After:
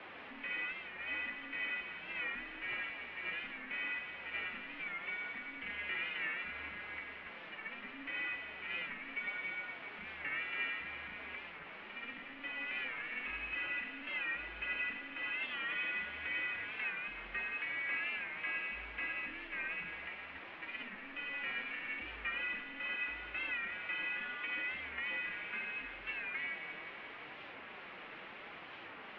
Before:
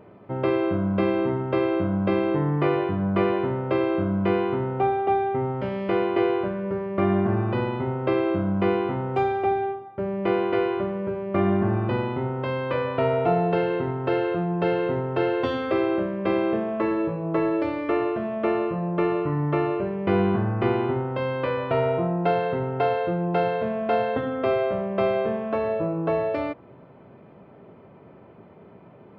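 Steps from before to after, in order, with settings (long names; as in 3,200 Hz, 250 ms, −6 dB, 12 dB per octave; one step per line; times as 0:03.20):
inverse Chebyshev band-stop filter 240–1,000 Hz, stop band 50 dB
compressor whose output falls as the input rises −40 dBFS, ratio −1
background noise white −48 dBFS
soft clipping −40 dBFS, distortion −11 dB
flanger 0.73 Hz, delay 4.2 ms, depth 2.8 ms, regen +55%
on a send: delay with a high-pass on its return 174 ms, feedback 67%, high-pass 2,100 Hz, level −5 dB
on the sum: single-sideband voice off tune −120 Hz 290–2,800 Hz
wow of a warped record 45 rpm, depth 100 cents
level +11.5 dB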